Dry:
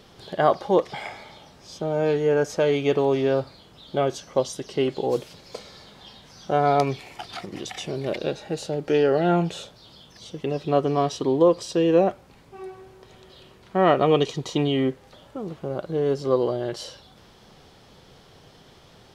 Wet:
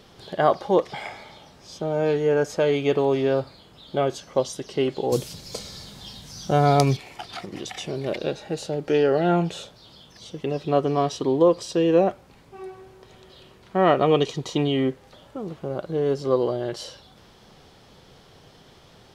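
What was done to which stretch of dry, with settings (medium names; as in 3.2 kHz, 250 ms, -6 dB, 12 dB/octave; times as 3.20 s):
2.46–4.32 s: band-stop 5.8 kHz
5.12–6.97 s: tone controls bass +10 dB, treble +13 dB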